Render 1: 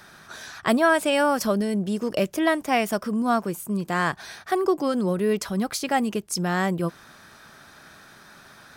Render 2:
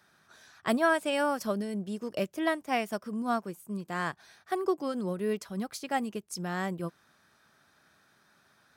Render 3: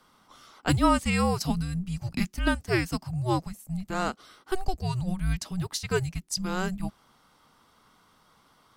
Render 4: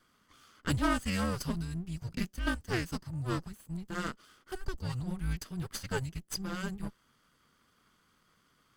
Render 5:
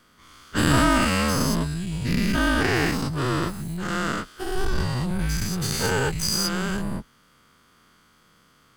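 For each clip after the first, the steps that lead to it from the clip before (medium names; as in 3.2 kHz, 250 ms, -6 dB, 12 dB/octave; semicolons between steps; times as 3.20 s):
high-pass 58 Hz; upward expansion 1.5:1, over -38 dBFS; trim -5.5 dB
dynamic bell 5.8 kHz, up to +7 dB, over -54 dBFS, Q 1; frequency shift -370 Hz; trim +3.5 dB
comb filter that takes the minimum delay 0.64 ms; trim -6 dB
every event in the spectrogram widened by 240 ms; trim +5 dB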